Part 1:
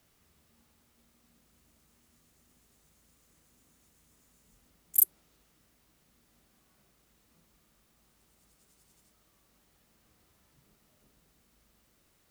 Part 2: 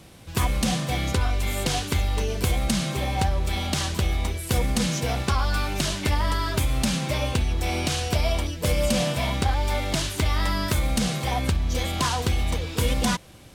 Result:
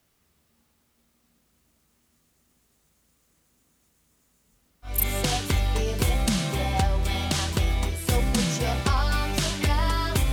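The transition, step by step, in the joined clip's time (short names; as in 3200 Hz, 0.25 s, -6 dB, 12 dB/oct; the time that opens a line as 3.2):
part 1
5.01 switch to part 2 from 1.43 s, crossfade 0.38 s equal-power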